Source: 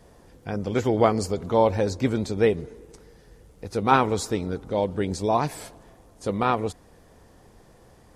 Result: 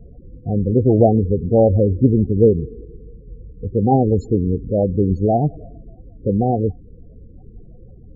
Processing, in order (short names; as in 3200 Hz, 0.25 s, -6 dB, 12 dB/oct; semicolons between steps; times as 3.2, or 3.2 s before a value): elliptic band-stop 780–2500 Hz, stop band 40 dB; tilt -2.5 dB/oct; loudest bins only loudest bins 16; gain +5 dB